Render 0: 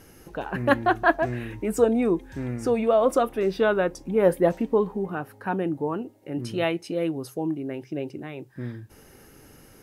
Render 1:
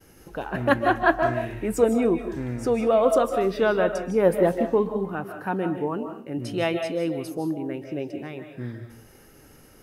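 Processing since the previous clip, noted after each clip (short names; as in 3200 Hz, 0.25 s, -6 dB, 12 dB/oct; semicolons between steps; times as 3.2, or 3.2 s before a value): expander -48 dBFS; reverb RT60 0.40 s, pre-delay 0.114 s, DRR 6 dB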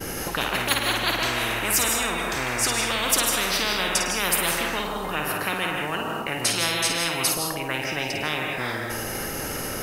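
on a send: flutter echo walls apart 9.1 m, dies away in 0.38 s; on the sum: spectral compressor 10:1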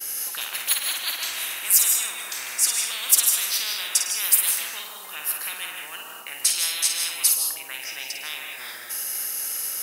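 differentiator; gain +4 dB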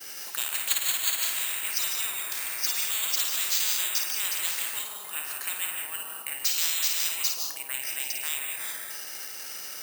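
careless resampling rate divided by 4×, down filtered, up zero stuff; gain -3 dB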